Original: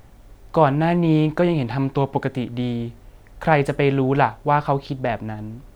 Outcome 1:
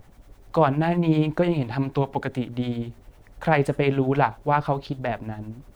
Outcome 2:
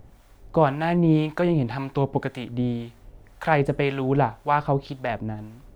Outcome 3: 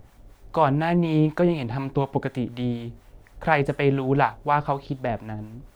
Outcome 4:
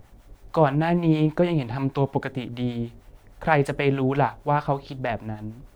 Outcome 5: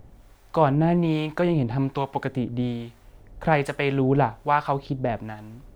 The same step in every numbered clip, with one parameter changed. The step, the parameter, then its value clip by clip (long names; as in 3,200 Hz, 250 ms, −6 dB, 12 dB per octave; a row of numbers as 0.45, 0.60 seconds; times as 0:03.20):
two-band tremolo in antiphase, speed: 10, 1.9, 4.1, 6.4, 1.2 Hertz